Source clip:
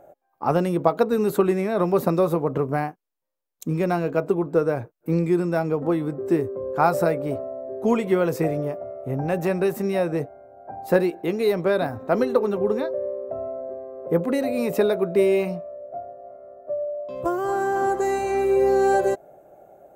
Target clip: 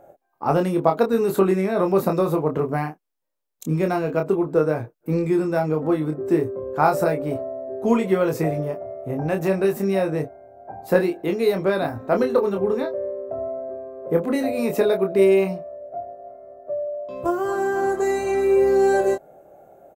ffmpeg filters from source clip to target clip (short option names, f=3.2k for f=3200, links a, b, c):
-filter_complex "[0:a]asplit=2[a][b];[b]adelay=26,volume=-5dB[c];[a][c]amix=inputs=2:normalize=0"